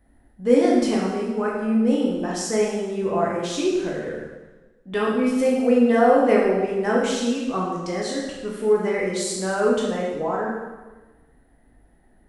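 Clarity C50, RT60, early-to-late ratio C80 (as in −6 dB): 0.5 dB, 1.2 s, 3.5 dB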